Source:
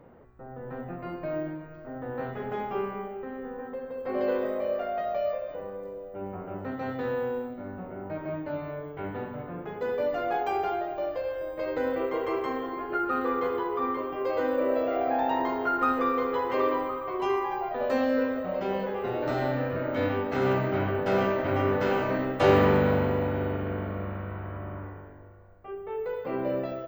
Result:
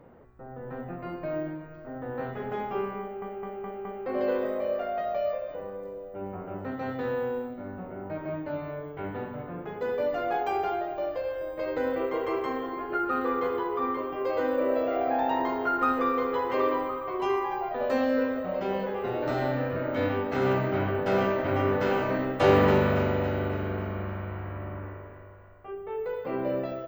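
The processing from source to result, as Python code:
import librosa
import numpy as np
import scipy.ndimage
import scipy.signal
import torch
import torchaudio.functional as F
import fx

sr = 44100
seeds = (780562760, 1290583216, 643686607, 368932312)

y = fx.echo_thinned(x, sr, ms=279, feedback_pct=53, hz=420.0, wet_db=-8.0, at=(22.21, 25.7))
y = fx.edit(y, sr, fx.stutter_over(start_s=3.01, slice_s=0.21, count=5), tone=tone)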